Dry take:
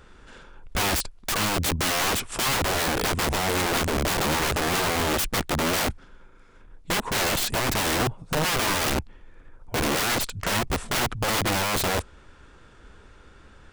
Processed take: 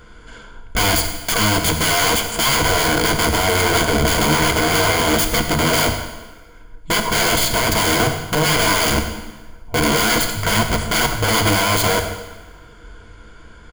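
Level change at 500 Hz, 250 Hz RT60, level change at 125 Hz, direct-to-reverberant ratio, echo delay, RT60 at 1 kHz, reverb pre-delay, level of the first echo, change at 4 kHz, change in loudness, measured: +8.0 dB, 1.2 s, +8.5 dB, 5.0 dB, 99 ms, 1.2 s, 5 ms, −14.5 dB, +8.0 dB, +8.0 dB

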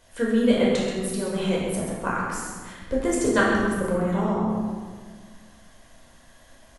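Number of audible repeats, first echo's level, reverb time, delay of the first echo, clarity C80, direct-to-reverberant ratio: 1, −7.0 dB, 1.6 s, 130 ms, 1.5 dB, −5.0 dB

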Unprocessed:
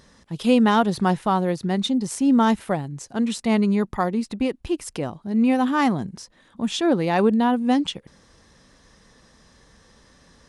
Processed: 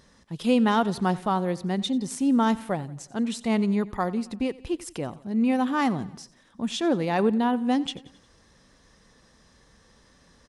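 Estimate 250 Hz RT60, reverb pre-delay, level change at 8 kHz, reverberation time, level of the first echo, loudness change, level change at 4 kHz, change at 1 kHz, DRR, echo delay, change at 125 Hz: no reverb audible, no reverb audible, −4.0 dB, no reverb audible, −20.0 dB, −4.0 dB, −4.0 dB, −4.0 dB, no reverb audible, 89 ms, −4.0 dB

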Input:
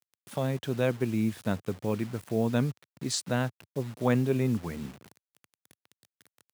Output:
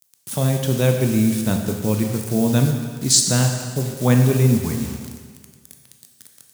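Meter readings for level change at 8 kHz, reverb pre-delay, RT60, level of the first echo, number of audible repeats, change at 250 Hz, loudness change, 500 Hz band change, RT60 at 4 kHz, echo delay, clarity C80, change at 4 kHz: +19.5 dB, 7 ms, 1.7 s, no echo audible, no echo audible, +10.0 dB, +11.5 dB, +7.0 dB, 1.6 s, no echo audible, 6.5 dB, +14.5 dB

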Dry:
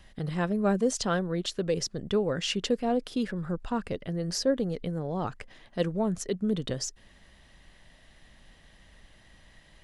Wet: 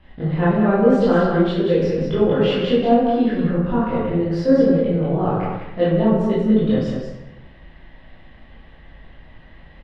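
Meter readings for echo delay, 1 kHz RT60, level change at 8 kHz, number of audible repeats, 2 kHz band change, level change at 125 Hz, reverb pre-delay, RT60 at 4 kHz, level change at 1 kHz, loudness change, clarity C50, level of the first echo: 186 ms, 0.90 s, below −15 dB, 1, +8.5 dB, +12.0 dB, 15 ms, 0.70 s, +11.5 dB, +11.5 dB, −2.0 dB, −4.0 dB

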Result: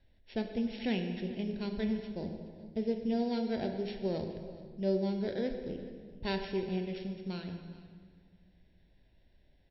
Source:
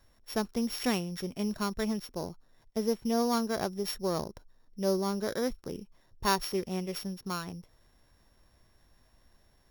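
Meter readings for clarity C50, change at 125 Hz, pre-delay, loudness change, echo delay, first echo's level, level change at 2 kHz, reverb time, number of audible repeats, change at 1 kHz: 6.0 dB, −0.5 dB, 19 ms, −3.0 dB, 424 ms, −19.5 dB, −5.0 dB, 1.8 s, 1, −10.0 dB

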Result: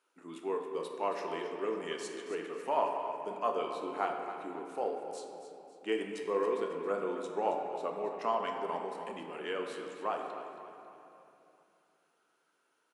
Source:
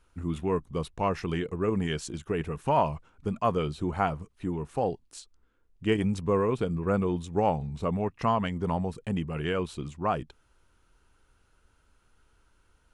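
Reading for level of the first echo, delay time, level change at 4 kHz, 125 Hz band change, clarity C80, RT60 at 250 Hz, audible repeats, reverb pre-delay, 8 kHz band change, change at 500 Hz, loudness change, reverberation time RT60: −11.5 dB, 273 ms, −5.5 dB, −27.0 dB, 4.0 dB, 3.4 s, 4, 5 ms, −6.0 dB, −4.0 dB, −6.5 dB, 2.8 s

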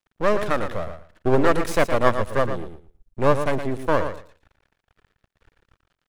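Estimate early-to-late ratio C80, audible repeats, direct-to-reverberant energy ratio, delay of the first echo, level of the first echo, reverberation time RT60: no reverb audible, 2, no reverb audible, 115 ms, −9.0 dB, no reverb audible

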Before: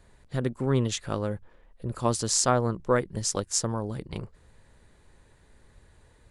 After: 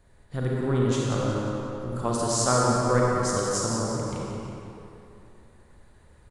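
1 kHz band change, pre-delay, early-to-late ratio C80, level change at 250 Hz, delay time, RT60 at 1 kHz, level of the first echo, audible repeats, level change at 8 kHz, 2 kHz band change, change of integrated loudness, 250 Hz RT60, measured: +4.0 dB, 33 ms, −2.5 dB, +3.5 dB, 180 ms, 2.9 s, −8.0 dB, 1, −0.5 dB, +3.5 dB, +2.0 dB, 2.6 s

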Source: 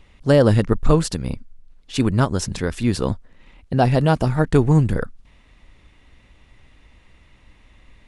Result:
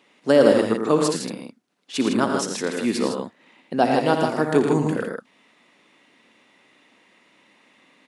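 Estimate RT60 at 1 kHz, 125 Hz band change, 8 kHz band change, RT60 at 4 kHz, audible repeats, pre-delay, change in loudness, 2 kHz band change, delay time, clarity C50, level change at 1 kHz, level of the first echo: no reverb audible, −13.5 dB, +1.0 dB, no reverb audible, 3, no reverb audible, −2.0 dB, +1.0 dB, 59 ms, no reverb audible, +1.0 dB, −12.5 dB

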